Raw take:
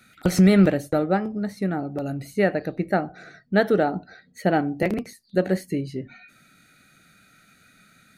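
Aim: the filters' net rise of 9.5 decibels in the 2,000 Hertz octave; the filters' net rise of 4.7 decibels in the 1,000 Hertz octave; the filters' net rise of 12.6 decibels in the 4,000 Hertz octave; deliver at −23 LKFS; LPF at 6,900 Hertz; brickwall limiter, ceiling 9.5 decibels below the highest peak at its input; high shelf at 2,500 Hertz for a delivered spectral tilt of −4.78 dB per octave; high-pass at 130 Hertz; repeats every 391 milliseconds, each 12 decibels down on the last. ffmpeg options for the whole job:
ffmpeg -i in.wav -af "highpass=130,lowpass=6900,equalizer=frequency=1000:width_type=o:gain=4.5,equalizer=frequency=2000:width_type=o:gain=5.5,highshelf=frequency=2500:gain=8,equalizer=frequency=4000:width_type=o:gain=7,alimiter=limit=-10dB:level=0:latency=1,aecho=1:1:391|782|1173:0.251|0.0628|0.0157,volume=1dB" out.wav

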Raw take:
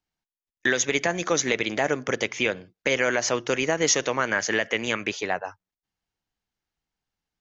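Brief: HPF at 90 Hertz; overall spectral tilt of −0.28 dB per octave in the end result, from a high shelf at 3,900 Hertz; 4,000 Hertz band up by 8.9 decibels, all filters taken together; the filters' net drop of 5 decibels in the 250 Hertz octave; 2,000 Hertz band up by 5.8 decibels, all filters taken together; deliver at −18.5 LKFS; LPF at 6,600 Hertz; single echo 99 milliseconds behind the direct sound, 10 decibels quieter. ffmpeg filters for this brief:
ffmpeg -i in.wav -af "highpass=90,lowpass=6600,equalizer=frequency=250:width_type=o:gain=-7,equalizer=frequency=2000:width_type=o:gain=4,highshelf=frequency=3900:gain=4.5,equalizer=frequency=4000:width_type=o:gain=8.5,aecho=1:1:99:0.316,volume=1dB" out.wav

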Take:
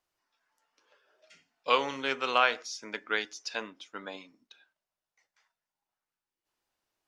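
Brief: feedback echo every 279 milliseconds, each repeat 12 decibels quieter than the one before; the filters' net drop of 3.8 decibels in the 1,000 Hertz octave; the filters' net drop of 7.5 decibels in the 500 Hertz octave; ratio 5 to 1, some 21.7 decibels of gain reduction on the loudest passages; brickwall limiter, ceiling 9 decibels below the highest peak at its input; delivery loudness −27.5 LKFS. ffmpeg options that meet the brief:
ffmpeg -i in.wav -af "equalizer=frequency=500:width_type=o:gain=-8,equalizer=frequency=1000:width_type=o:gain=-3,acompressor=threshold=-47dB:ratio=5,alimiter=level_in=14dB:limit=-24dB:level=0:latency=1,volume=-14dB,aecho=1:1:279|558|837:0.251|0.0628|0.0157,volume=25dB" out.wav

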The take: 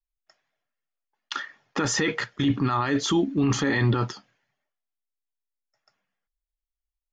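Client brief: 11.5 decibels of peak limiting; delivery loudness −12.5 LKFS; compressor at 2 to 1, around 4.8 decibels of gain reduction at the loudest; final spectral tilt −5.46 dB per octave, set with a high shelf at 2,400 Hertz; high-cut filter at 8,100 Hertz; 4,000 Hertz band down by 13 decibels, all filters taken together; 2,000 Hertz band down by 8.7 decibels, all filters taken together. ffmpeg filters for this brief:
ffmpeg -i in.wav -af "lowpass=8100,equalizer=frequency=2000:width_type=o:gain=-5.5,highshelf=frequency=2400:gain=-6.5,equalizer=frequency=4000:width_type=o:gain=-9,acompressor=threshold=-27dB:ratio=2,volume=25dB,alimiter=limit=-3dB:level=0:latency=1" out.wav

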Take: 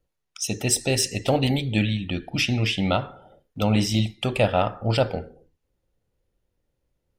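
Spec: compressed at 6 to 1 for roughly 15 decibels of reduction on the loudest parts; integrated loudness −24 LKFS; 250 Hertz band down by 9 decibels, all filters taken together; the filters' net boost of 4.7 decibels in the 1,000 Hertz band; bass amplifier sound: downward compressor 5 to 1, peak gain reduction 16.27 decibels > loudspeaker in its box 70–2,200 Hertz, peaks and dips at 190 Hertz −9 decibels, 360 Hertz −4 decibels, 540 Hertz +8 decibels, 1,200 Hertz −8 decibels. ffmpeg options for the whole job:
ffmpeg -i in.wav -af "equalizer=frequency=250:width_type=o:gain=-7.5,equalizer=frequency=1000:width_type=o:gain=8.5,acompressor=threshold=-30dB:ratio=6,acompressor=threshold=-45dB:ratio=5,highpass=frequency=70:width=0.5412,highpass=frequency=70:width=1.3066,equalizer=frequency=190:width_type=q:width=4:gain=-9,equalizer=frequency=360:width_type=q:width=4:gain=-4,equalizer=frequency=540:width_type=q:width=4:gain=8,equalizer=frequency=1200:width_type=q:width=4:gain=-8,lowpass=frequency=2200:width=0.5412,lowpass=frequency=2200:width=1.3066,volume=24.5dB" out.wav

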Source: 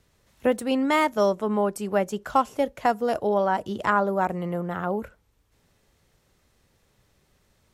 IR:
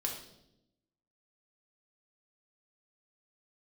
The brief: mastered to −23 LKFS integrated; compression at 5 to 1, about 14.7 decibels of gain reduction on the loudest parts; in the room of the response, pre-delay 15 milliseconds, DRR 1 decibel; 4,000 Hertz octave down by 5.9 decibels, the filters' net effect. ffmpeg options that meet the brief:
-filter_complex "[0:a]equalizer=frequency=4000:width_type=o:gain=-9,acompressor=threshold=-33dB:ratio=5,asplit=2[link_01][link_02];[1:a]atrim=start_sample=2205,adelay=15[link_03];[link_02][link_03]afir=irnorm=-1:irlink=0,volume=-3dB[link_04];[link_01][link_04]amix=inputs=2:normalize=0,volume=10.5dB"

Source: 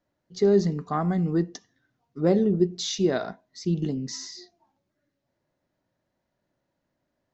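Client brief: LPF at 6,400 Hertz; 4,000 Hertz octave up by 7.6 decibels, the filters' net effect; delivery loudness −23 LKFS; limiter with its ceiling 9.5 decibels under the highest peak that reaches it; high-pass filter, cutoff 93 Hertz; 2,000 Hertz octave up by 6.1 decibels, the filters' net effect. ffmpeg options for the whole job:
ffmpeg -i in.wav -af "highpass=93,lowpass=6400,equalizer=frequency=2000:width_type=o:gain=6.5,equalizer=frequency=4000:width_type=o:gain=8,volume=6dB,alimiter=limit=-12.5dB:level=0:latency=1" out.wav

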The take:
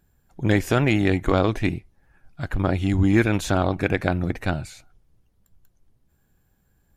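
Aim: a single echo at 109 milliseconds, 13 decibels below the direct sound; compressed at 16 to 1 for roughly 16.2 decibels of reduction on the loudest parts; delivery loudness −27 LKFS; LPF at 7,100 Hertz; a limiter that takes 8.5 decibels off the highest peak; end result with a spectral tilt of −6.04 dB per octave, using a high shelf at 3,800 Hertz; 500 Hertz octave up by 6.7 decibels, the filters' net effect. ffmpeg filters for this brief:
ffmpeg -i in.wav -af "lowpass=7100,equalizer=frequency=500:width_type=o:gain=8.5,highshelf=frequency=3800:gain=5,acompressor=threshold=-26dB:ratio=16,alimiter=limit=-23dB:level=0:latency=1,aecho=1:1:109:0.224,volume=8.5dB" out.wav

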